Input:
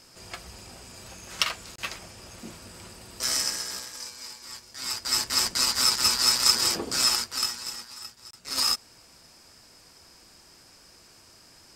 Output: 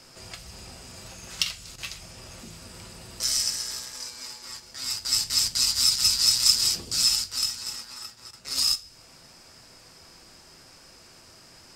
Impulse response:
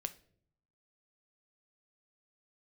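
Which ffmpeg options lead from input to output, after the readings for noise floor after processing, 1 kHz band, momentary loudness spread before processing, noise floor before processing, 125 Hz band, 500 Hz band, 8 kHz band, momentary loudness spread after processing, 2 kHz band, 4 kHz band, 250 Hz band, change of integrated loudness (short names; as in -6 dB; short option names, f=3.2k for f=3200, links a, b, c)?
-52 dBFS, -10.0 dB, 23 LU, -55 dBFS, +2.0 dB, n/a, +1.5 dB, 24 LU, -5.0 dB, +1.5 dB, -5.5 dB, +1.0 dB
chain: -filter_complex "[0:a]highshelf=f=8.8k:g=-5,acrossover=split=150|3000[a][b][c];[b]acompressor=threshold=-50dB:ratio=5[d];[a][d][c]amix=inputs=3:normalize=0[e];[1:a]atrim=start_sample=2205[f];[e][f]afir=irnorm=-1:irlink=0,volume=5dB"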